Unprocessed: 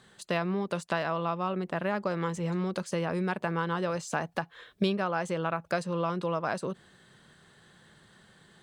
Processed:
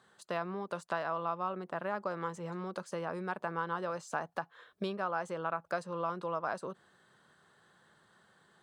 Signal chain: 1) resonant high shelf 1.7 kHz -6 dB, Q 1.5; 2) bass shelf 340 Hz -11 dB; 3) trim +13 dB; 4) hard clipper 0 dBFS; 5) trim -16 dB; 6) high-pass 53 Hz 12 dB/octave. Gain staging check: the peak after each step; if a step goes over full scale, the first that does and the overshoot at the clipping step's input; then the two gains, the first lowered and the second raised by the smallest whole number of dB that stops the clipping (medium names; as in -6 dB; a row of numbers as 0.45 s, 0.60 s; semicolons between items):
-14.5 dBFS, -16.5 dBFS, -3.5 dBFS, -3.5 dBFS, -19.5 dBFS, -19.5 dBFS; nothing clips